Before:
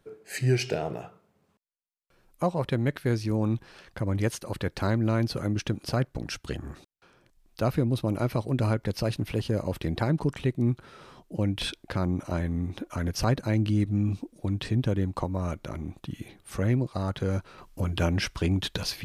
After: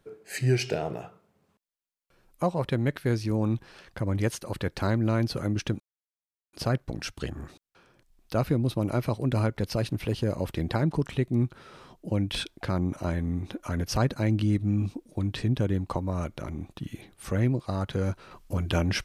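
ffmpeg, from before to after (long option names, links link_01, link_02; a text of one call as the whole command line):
ffmpeg -i in.wav -filter_complex "[0:a]asplit=2[link_01][link_02];[link_01]atrim=end=5.8,asetpts=PTS-STARTPTS,afade=type=out:start_time=5.796:duration=0.004:curve=hsin,apad=pad_dur=0.73[link_03];[link_02]atrim=start=5.8,asetpts=PTS-STARTPTS,afade=type=in:duration=0.004:curve=hsin[link_04];[link_03][link_04]concat=n=2:v=0:a=1" out.wav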